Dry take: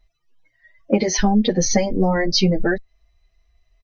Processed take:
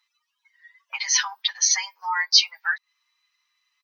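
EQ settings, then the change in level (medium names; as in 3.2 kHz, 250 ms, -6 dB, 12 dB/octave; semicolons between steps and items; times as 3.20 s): rippled Chebyshev high-pass 900 Hz, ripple 3 dB; +5.0 dB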